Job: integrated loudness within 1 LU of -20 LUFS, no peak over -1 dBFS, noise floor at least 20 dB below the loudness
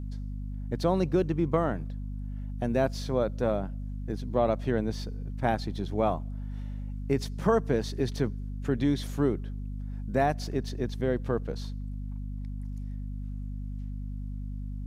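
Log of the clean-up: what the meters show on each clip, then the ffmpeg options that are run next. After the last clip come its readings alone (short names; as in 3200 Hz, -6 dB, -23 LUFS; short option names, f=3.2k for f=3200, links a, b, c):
hum 50 Hz; harmonics up to 250 Hz; hum level -33 dBFS; loudness -31.0 LUFS; peak -10.5 dBFS; loudness target -20.0 LUFS
-> -af "bandreject=f=50:t=h:w=6,bandreject=f=100:t=h:w=6,bandreject=f=150:t=h:w=6,bandreject=f=200:t=h:w=6,bandreject=f=250:t=h:w=6"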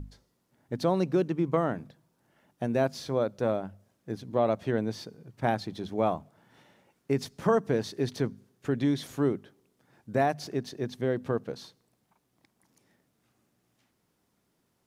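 hum none; loudness -30.0 LUFS; peak -11.5 dBFS; loudness target -20.0 LUFS
-> -af "volume=10dB"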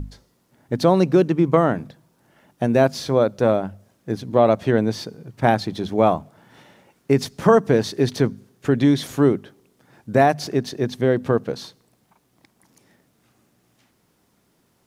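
loudness -20.0 LUFS; peak -1.5 dBFS; noise floor -65 dBFS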